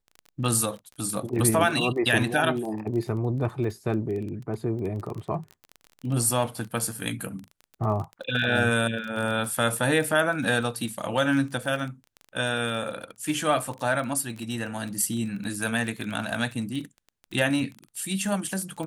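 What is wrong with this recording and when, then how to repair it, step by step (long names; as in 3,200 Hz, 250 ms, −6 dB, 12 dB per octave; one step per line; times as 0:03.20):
surface crackle 25 per second −31 dBFS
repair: click removal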